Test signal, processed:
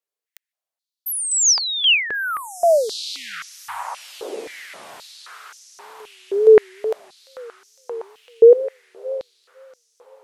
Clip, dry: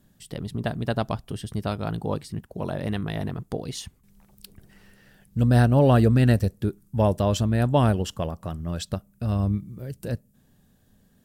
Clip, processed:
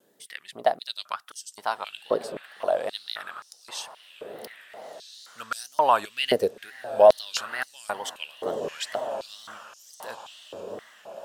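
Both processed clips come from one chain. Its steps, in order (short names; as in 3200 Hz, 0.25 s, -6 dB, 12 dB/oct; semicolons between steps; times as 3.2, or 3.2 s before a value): diffused feedback echo 1.443 s, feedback 45%, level -12.5 dB; wow and flutter 140 cents; stepped high-pass 3.8 Hz 440–5900 Hz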